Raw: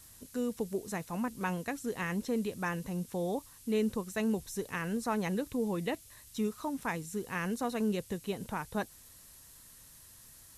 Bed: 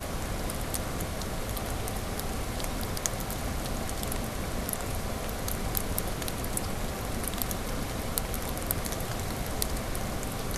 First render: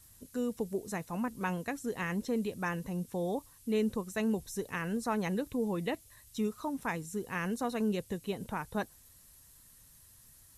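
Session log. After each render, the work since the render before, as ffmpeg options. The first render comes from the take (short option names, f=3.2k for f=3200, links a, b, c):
-af "afftdn=nr=6:nf=-56"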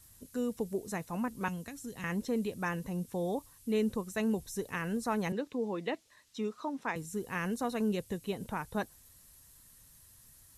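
-filter_complex "[0:a]asettb=1/sr,asplit=3[a][b][c];[a]atrim=end=1.484[d];[b]atrim=start=1.48:end=2.04,asetpts=PTS-STARTPTS,afade=t=in:d=0.004:c=qsin,afade=t=out:st=0.556:d=0.004:c=qsin,acrossover=split=210|3000[e][f][g];[f]acompressor=threshold=-46dB:ratio=6:attack=3.2:release=140:knee=2.83:detection=peak[h];[e][h][g]amix=inputs=3:normalize=0[i];[c]atrim=start=2.036[j];[d][i]acrossfade=d=0.004:c1=hsin:c2=qsin[k];[k][j]acrossfade=d=0.004:c1=qsin:c2=hsin,asettb=1/sr,asplit=3[l][m][n];[l]atrim=end=5.324[o];[m]atrim=start=5.32:end=6.96,asetpts=PTS-STARTPTS,afade=t=in:d=0.004:c=qsin,afade=t=out:st=1.636:d=0.004:c=qsin,acrossover=split=200 6500:gain=0.0891 1 0.112[p][q][r];[p][q][r]amix=inputs=3:normalize=0[s];[n]atrim=start=6.956[t];[o][s]acrossfade=d=0.004:c1=hsin:c2=qsin[u];[u][t]acrossfade=d=0.004:c1=qsin:c2=hsin"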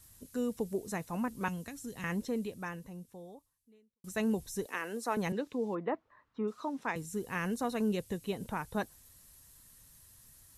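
-filter_complex "[0:a]asettb=1/sr,asplit=3[a][b][c];[a]atrim=end=4.664[d];[b]atrim=start=4.66:end=5.17,asetpts=PTS-STARTPTS,afade=t=in:d=0.004:c=qsin,afade=t=out:st=0.506:d=0.004:c=qsin,highpass=f=280:w=0.5412,highpass=f=280:w=1.3066[e];[c]atrim=start=5.166[f];[d][e]acrossfade=d=0.004:c1=hsin:c2=qsin[g];[g][f]acrossfade=d=0.004:c1=qsin:c2=hsin,asplit=3[h][i][j];[h]afade=t=out:st=5.74:d=0.02[k];[i]lowpass=f=1.2k:t=q:w=2.2,afade=t=in:st=5.74:d=0.02,afade=t=out:st=6.47:d=0.02[l];[j]afade=t=in:st=6.47:d=0.02[m];[k][l][m]amix=inputs=3:normalize=0,asplit=2[n][o];[n]atrim=end=4.04,asetpts=PTS-STARTPTS,afade=t=out:st=2.11:d=1.93:c=qua[p];[o]atrim=start=4.04,asetpts=PTS-STARTPTS,afade=t=in:d=0.004:c=hsin[q];[p][q]concat=n=2:v=0:a=1"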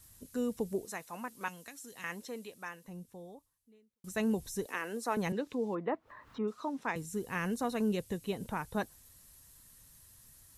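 -filter_complex "[0:a]asettb=1/sr,asplit=3[a][b][c];[a]atrim=end=0.854[d];[b]atrim=start=0.85:end=2.88,asetpts=PTS-STARTPTS,afade=t=in:d=0.004:c=qsin,afade=t=out:st=2.026:d=0.004:c=qsin,highpass=f=830:p=1[e];[c]atrim=start=2.876[f];[d][e]acrossfade=d=0.004:c1=hsin:c2=qsin[g];[g][f]acrossfade=d=0.004:c1=qsin:c2=hsin,asettb=1/sr,asplit=3[h][i][j];[h]atrim=end=4.314[k];[i]atrim=start=4.31:end=6.4,asetpts=PTS-STARTPTS,afade=t=in:d=0.004:c=qsin,afade=t=out:st=2.086:d=0.004:c=qsin,acompressor=mode=upward:threshold=-40dB:ratio=2.5:attack=3.2:release=140:knee=2.83:detection=peak[l];[j]atrim=start=6.396[m];[k][l]acrossfade=d=0.004:c1=hsin:c2=qsin[n];[n][m]acrossfade=d=0.004:c1=qsin:c2=hsin"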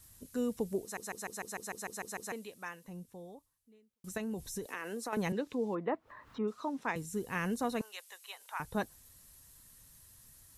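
-filter_complex "[0:a]asettb=1/sr,asplit=3[a][b][c];[a]atrim=end=4.174[d];[b]atrim=start=4.17:end=5.13,asetpts=PTS-STARTPTS,afade=t=in:d=0.004:c=qsin,afade=t=out:st=0.956:d=0.004:c=qsin,acompressor=threshold=-34dB:ratio=6:attack=3.2:release=140:knee=1:detection=peak[e];[c]atrim=start=5.126[f];[d][e]acrossfade=d=0.004:c1=hsin:c2=qsin[g];[g][f]acrossfade=d=0.004:c1=qsin:c2=hsin,asettb=1/sr,asplit=3[h][i][j];[h]atrim=end=7.814[k];[i]atrim=start=7.81:end=8.6,asetpts=PTS-STARTPTS,afade=t=in:d=0.004:c=qsin,afade=t=out:st=0.786:d=0.004:c=qsin,highpass=f=890:w=0.5412,highpass=f=890:w=1.3066[l];[j]atrim=start=8.596[m];[k][l]acrossfade=d=0.004:c1=hsin:c2=qsin[n];[n][m]acrossfade=d=0.004:c1=qsin:c2=hsin,asplit=11[o][p][q][r][s][t][u][v][w][x][y];[o]atrim=end=0.972[z];[p]atrim=start=0.818:end=0.972[aa];[q]atrim=start=0.818:end=0.972[ab];[r]atrim=start=0.818:end=0.972[ac];[s]atrim=start=0.818:end=0.972[ad];[t]atrim=start=0.818:end=0.972[ae];[u]atrim=start=0.818:end=0.972[af];[v]atrim=start=0.818:end=0.972[ag];[w]atrim=start=0.818:end=0.972[ah];[x]atrim=start=0.818:end=0.972[ai];[y]atrim=start=2.318[aj];[z][aa]acrossfade=d=0.004:c1=hsin:c2=hsin[ak];[ak][ab]acrossfade=d=0.004:c1=hsin:c2=hsin[al];[al][ac]acrossfade=d=0.004:c1=hsin:c2=hsin[am];[am][ad]acrossfade=d=0.004:c1=hsin:c2=hsin[an];[an][ae]acrossfade=d=0.004:c1=hsin:c2=hsin[ao];[ao][af]acrossfade=d=0.004:c1=hsin:c2=hsin[ap];[ap][ag]acrossfade=d=0.004:c1=hsin:c2=hsin[aq];[aq][ah]acrossfade=d=0.004:c1=hsin:c2=hsin[ar];[ar][ai]acrossfade=d=0.004:c1=hsin:c2=hsin[as];[as][aj]acrossfade=d=0.004:c1=hsin:c2=hsin"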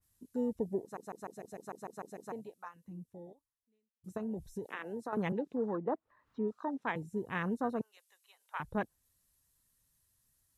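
-af "afwtdn=0.01,adynamicequalizer=threshold=0.00224:dfrequency=2700:dqfactor=0.7:tfrequency=2700:tqfactor=0.7:attack=5:release=100:ratio=0.375:range=2.5:mode=cutabove:tftype=highshelf"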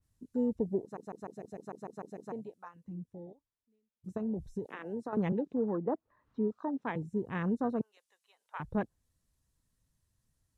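-af "lowpass=8.3k,tiltshelf=f=680:g=5"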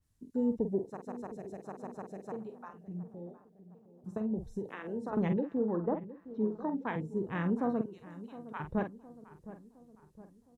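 -filter_complex "[0:a]asplit=2[a][b];[b]adelay=46,volume=-8dB[c];[a][c]amix=inputs=2:normalize=0,asplit=2[d][e];[e]adelay=713,lowpass=f=1.3k:p=1,volume=-15dB,asplit=2[f][g];[g]adelay=713,lowpass=f=1.3k:p=1,volume=0.53,asplit=2[h][i];[i]adelay=713,lowpass=f=1.3k:p=1,volume=0.53,asplit=2[j][k];[k]adelay=713,lowpass=f=1.3k:p=1,volume=0.53,asplit=2[l][m];[m]adelay=713,lowpass=f=1.3k:p=1,volume=0.53[n];[d][f][h][j][l][n]amix=inputs=6:normalize=0"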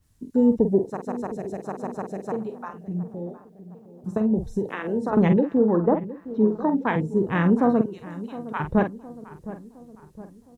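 -af "volume=12dB"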